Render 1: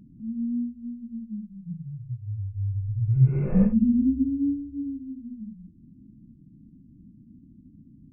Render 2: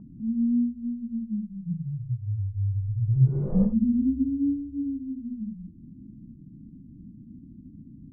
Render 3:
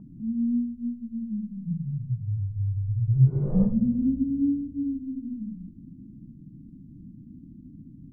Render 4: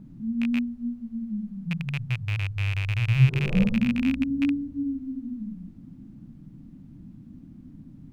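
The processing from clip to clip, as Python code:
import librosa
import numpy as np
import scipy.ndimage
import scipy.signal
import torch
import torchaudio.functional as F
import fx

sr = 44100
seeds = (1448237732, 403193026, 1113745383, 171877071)

y1 = scipy.signal.sosfilt(scipy.signal.butter(4, 1100.0, 'lowpass', fs=sr, output='sos'), x)
y1 = fx.rider(y1, sr, range_db=5, speed_s=2.0)
y2 = fx.room_shoebox(y1, sr, seeds[0], volume_m3=3300.0, walls='mixed', distance_m=0.43)
y3 = fx.rattle_buzz(y2, sr, strikes_db=-26.0, level_db=-20.0)
y3 = fx.dmg_noise_colour(y3, sr, seeds[1], colour='brown', level_db=-59.0)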